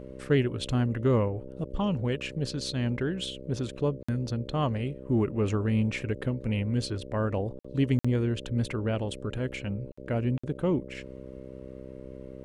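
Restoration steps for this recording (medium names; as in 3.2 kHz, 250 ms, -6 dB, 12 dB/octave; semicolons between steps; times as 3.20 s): de-hum 65.1 Hz, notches 9; interpolate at 4.03/7.59/7.99/9.92/10.38 s, 55 ms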